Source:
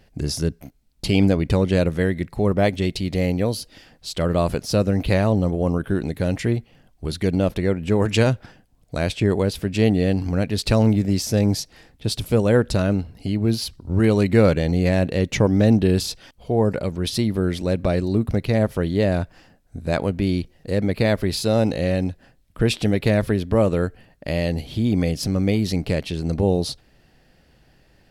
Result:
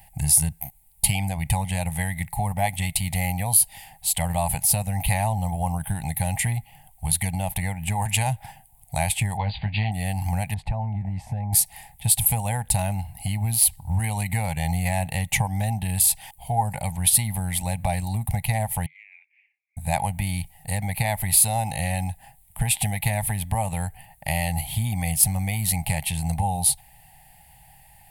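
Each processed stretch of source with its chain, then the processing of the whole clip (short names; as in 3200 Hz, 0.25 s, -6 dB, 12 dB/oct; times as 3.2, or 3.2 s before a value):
9.37–9.92 brick-wall FIR low-pass 4800 Hz + doubler 19 ms -6.5 dB
10.54–11.53 LPF 1200 Hz + compressor 10:1, threshold -21 dBFS
18.86–19.77 Butterworth band-pass 2300 Hz, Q 6.8 + compressor 2.5:1, threshold -53 dBFS
whole clip: high shelf 3900 Hz +9 dB; compressor, threshold -19 dBFS; EQ curve 150 Hz 0 dB, 380 Hz -29 dB, 570 Hz -12 dB, 820 Hz +14 dB, 1300 Hz -17 dB, 2000 Hz +3 dB, 5600 Hz -11 dB, 9200 Hz +12 dB; gain +2 dB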